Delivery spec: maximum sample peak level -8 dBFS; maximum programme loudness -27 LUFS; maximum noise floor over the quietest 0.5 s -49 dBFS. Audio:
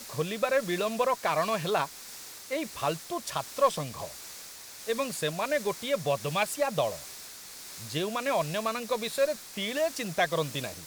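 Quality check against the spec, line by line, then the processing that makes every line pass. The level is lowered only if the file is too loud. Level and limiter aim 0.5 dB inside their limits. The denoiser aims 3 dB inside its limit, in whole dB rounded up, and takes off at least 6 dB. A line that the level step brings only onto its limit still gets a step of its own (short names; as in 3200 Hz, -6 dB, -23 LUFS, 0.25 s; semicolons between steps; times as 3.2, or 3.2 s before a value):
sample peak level -12.0 dBFS: OK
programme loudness -30.0 LUFS: OK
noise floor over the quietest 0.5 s -45 dBFS: fail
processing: denoiser 7 dB, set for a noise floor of -45 dBFS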